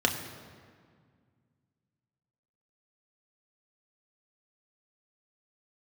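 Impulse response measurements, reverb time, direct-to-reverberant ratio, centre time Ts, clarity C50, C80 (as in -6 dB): 1.9 s, 2.0 dB, 31 ms, 8.0 dB, 9.0 dB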